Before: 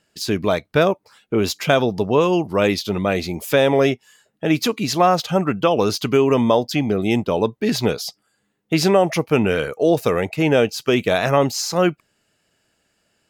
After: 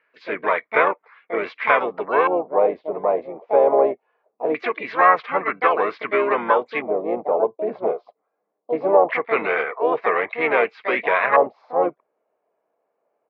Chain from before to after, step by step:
pitch-shifted copies added −3 semitones −8 dB, +7 semitones −6 dB
auto-filter low-pass square 0.22 Hz 690–1,800 Hz
loudspeaker in its box 450–4,400 Hz, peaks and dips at 460 Hz +6 dB, 1,100 Hz +9 dB, 2,200 Hz +9 dB
level −6.5 dB

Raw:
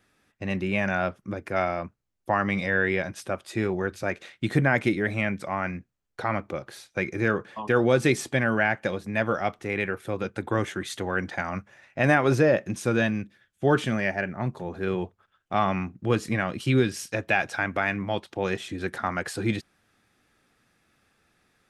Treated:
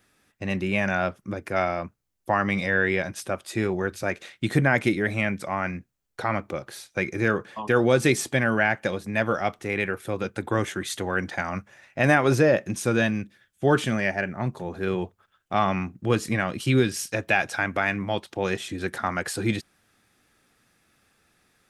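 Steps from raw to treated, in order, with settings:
high-shelf EQ 6,000 Hz +7 dB
level +1 dB

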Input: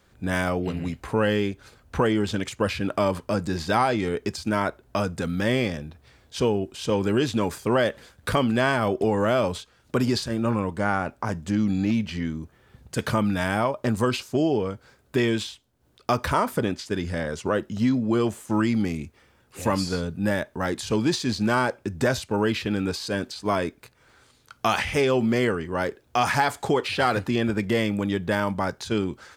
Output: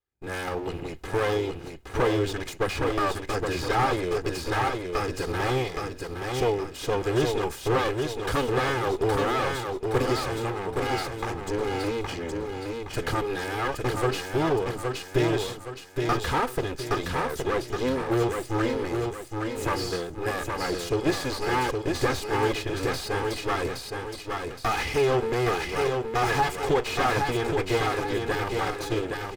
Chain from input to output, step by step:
lower of the sound and its delayed copy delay 2.4 ms
noise gate −50 dBFS, range −27 dB
automatic gain control gain up to 3 dB
repeating echo 818 ms, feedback 41%, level −4.5 dB
slew-rate limiting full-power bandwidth 160 Hz
level −2.5 dB

